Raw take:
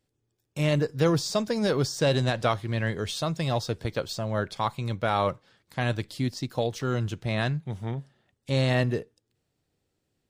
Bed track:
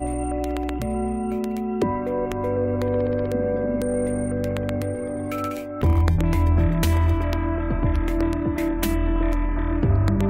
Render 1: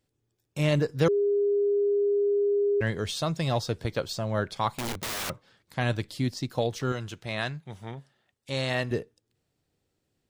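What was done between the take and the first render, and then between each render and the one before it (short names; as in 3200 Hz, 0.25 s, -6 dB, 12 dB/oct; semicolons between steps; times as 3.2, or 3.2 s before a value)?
1.08–2.81 bleep 406 Hz -21 dBFS; 4.75–5.3 wrapped overs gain 28 dB; 6.92–8.91 low shelf 450 Hz -9.5 dB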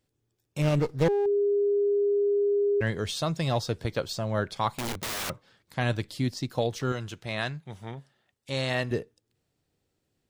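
0.62–1.26 running maximum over 17 samples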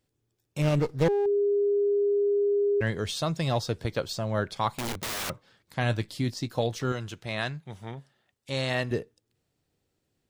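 5.81–6.85 doubler 18 ms -12 dB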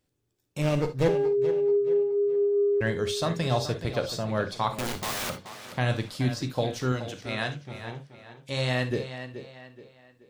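tape echo 0.427 s, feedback 41%, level -10 dB, low-pass 5400 Hz; non-linear reverb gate 90 ms flat, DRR 7.5 dB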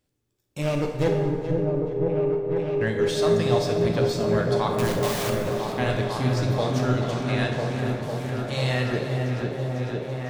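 repeats that get brighter 0.5 s, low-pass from 400 Hz, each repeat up 1 oct, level 0 dB; plate-style reverb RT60 2.5 s, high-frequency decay 0.6×, DRR 4 dB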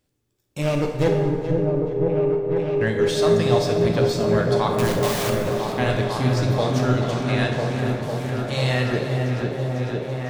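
gain +3 dB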